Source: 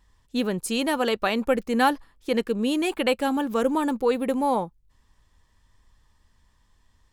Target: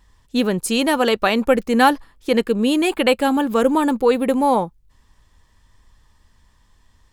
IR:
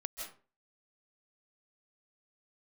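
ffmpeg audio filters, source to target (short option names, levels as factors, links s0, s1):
-filter_complex "[0:a]asettb=1/sr,asplit=3[s0][s1][s2];[s0]atrim=end=2.344[s3];[s1]atrim=start=2.34:end=4.41,asetpts=PTS-STARTPTS,afade=t=in:d=0.004:c=qsin,afade=t=out:st=2.066:d=0.004:c=qsin,bandreject=f=5800:w=7.4[s4];[s2]atrim=start=4.406[s5];[s3][s4]acrossfade=d=0.004:c1=hsin:c2=qsin[s6];[s6][s5]acrossfade=d=0.004:c1=qsin:c2=hsin,volume=2.11"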